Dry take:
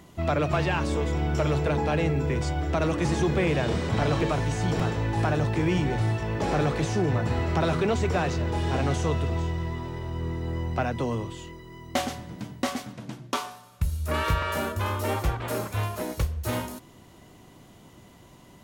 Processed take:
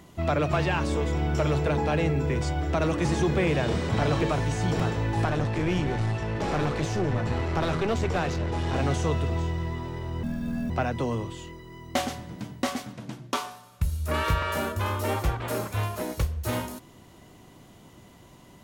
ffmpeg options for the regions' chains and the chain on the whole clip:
ffmpeg -i in.wav -filter_complex "[0:a]asettb=1/sr,asplit=3[link_01][link_02][link_03];[link_01]atrim=end=5.254[link_04];[link_02]atrim=start=5.25:end=8.76,asetpts=PTS-STARTPTS,afade=type=in:duration=0.004:curve=qsin,afade=type=out:start_time=3.506:duration=0.004:curve=qsin,lowpass=8900,aeval=exprs='clip(val(0),-1,0.0473)':channel_layout=same[link_05];[link_03]atrim=start=8.756[link_06];[link_04][link_05]acrossfade=duration=0.004:curve1=hsin:curve2=qsin[link_07];[link_07][link_06]acrossfade=duration=0.004:curve1=qsin:curve2=hsin,asettb=1/sr,asplit=3[link_08][link_09][link_10];[link_08]atrim=end=10.234[link_11];[link_09]atrim=start=10.23:end=10.7,asetpts=PTS-STARTPTS,afade=type=in:duration=0.004:curve=qsin,afade=type=out:start_time=0.466:duration=0.004:curve=qsin,afreqshift=-320,acrusher=bits=8:mode=log:mix=0:aa=0.000001[link_12];[link_10]atrim=start=10.696[link_13];[link_11][link_12]acrossfade=duration=0.004:curve1=hsin:curve2=qsin[link_14];[link_14][link_13]acrossfade=duration=0.004:curve1=qsin:curve2=hsin" out.wav

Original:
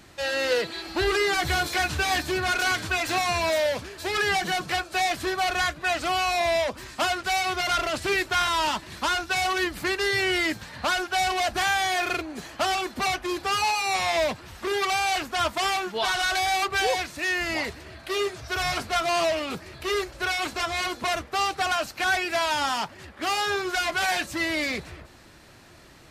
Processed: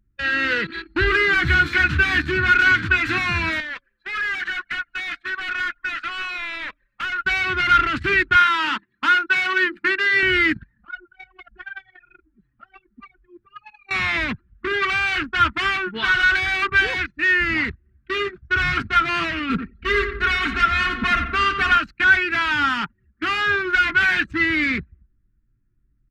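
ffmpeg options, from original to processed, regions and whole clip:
ffmpeg -i in.wav -filter_complex "[0:a]asettb=1/sr,asplit=3[link_01][link_02][link_03];[link_01]atrim=end=3.604[link_04];[link_02]atrim=start=3.6:end=7.25,asetpts=PTS-STARTPTS,afade=type=in:duration=0.004:curve=qsin,afade=type=out:start_time=3.646:duration=0.004:curve=qsin,highpass=810,asoftclip=type=hard:threshold=-31dB,asplit=8[link_05][link_06][link_07][link_08][link_09][link_10][link_11][link_12];[link_06]adelay=151,afreqshift=-41,volume=-12dB[link_13];[link_07]adelay=302,afreqshift=-82,volume=-16.3dB[link_14];[link_08]adelay=453,afreqshift=-123,volume=-20.6dB[link_15];[link_09]adelay=604,afreqshift=-164,volume=-24.9dB[link_16];[link_10]adelay=755,afreqshift=-205,volume=-29.2dB[link_17];[link_11]adelay=906,afreqshift=-246,volume=-33.5dB[link_18];[link_12]adelay=1057,afreqshift=-287,volume=-37.8dB[link_19];[link_05][link_13][link_14][link_15][link_16][link_17][link_18][link_19]amix=inputs=8:normalize=0,atrim=end_sample=160965[link_20];[link_03]atrim=start=7.246[link_21];[link_04][link_20]acrossfade=duration=0.004:curve1=hsin:curve2=qsin[link_22];[link_22][link_21]acrossfade=duration=0.004:curve1=qsin:curve2=hsin,asettb=1/sr,asplit=3[link_23][link_24][link_25];[link_23]atrim=end=8.364[link_26];[link_24]atrim=start=8.36:end=10.23,asetpts=PTS-STARTPTS,afade=type=in:duration=0.004:curve=qsin,afade=type=out:start_time=1.866:duration=0.004:curve=qsin,highpass=280,bandreject=frequency=50:width_type=h:width=6,bandreject=frequency=100:width_type=h:width=6,bandreject=frequency=150:width_type=h:width=6,bandreject=frequency=200:width_type=h:width=6,bandreject=frequency=250:width_type=h:width=6,bandreject=frequency=300:width_type=h:width=6,bandreject=frequency=350:width_type=h:width=6,bandreject=frequency=400:width_type=h:width=6,bandreject=frequency=450:width_type=h:width=6,bandreject=frequency=500:width_type=h:width=6[link_27];[link_25]atrim=start=10.226[link_28];[link_26][link_27]acrossfade=duration=0.004:curve1=hsin:curve2=qsin[link_29];[link_29][link_28]acrossfade=duration=0.004:curve1=qsin:curve2=hsin,asettb=1/sr,asplit=3[link_30][link_31][link_32];[link_30]atrim=end=10.734[link_33];[link_31]atrim=start=10.73:end=13.91,asetpts=PTS-STARTPTS,afade=type=in:duration=0.004:curve=qsin,afade=type=out:start_time=3.176:duration=0.004:curve=qsin,acompressor=threshold=-34dB:ratio=3:attack=3.2:release=140:knee=1:detection=peak,flanger=delay=4:depth=5.2:regen=14:speed=1.3:shape=triangular[link_34];[link_32]atrim=start=13.906[link_35];[link_33][link_34]acrossfade=duration=0.004:curve1=hsin:curve2=qsin[link_36];[link_36][link_35]acrossfade=duration=0.004:curve1=qsin:curve2=hsin,asettb=1/sr,asplit=3[link_37][link_38][link_39];[link_37]atrim=end=19.494[link_40];[link_38]atrim=start=19.49:end=21.78,asetpts=PTS-STARTPTS,afade=type=in:duration=0.004:curve=qsin,afade=type=out:start_time=2.286:duration=0.004:curve=qsin,lowshelf=frequency=94:gain=7,aecho=1:1:4.4:0.73,atrim=end_sample=100989,asplit=2[link_41][link_42];[link_42]adelay=88,lowpass=frequency=3700:poles=1,volume=-8dB,asplit=2[link_43][link_44];[link_44]adelay=88,lowpass=frequency=3700:poles=1,volume=0.52,asplit=2[link_45][link_46];[link_46]adelay=88,lowpass=frequency=3700:poles=1,volume=0.52,asplit=2[link_47][link_48];[link_48]adelay=88,lowpass=frequency=3700:poles=1,volume=0.52,asplit=2[link_49][link_50];[link_50]adelay=88,lowpass=frequency=3700:poles=1,volume=0.52,asplit=2[link_51][link_52];[link_52]adelay=88,lowpass=frequency=3700:poles=1,volume=0.52[link_53];[link_41][link_43][link_45][link_47][link_49][link_51][link_53]amix=inputs=7:normalize=0,atrim=end_sample=100989[link_54];[link_39]atrim=start=21.776[link_55];[link_40][link_54]acrossfade=duration=0.004:curve1=hsin:curve2=qsin[link_56];[link_56][link_55]acrossfade=duration=0.004:curve1=qsin:curve2=hsin,agate=range=-7dB:threshold=-36dB:ratio=16:detection=peak,anlmdn=3.98,firequalizer=gain_entry='entry(280,0);entry(610,-24);entry(1400,3);entry(5200,-17);entry(10000,-25)':delay=0.05:min_phase=1,volume=9dB" out.wav

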